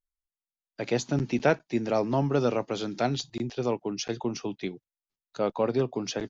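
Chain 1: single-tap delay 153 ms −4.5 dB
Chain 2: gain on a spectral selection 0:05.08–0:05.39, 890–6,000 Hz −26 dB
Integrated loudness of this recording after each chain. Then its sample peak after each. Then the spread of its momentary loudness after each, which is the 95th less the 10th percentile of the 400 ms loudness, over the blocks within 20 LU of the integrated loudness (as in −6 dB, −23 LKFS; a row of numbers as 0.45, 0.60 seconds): −27.5, −29.0 LKFS; −10.0, −10.0 dBFS; 9, 8 LU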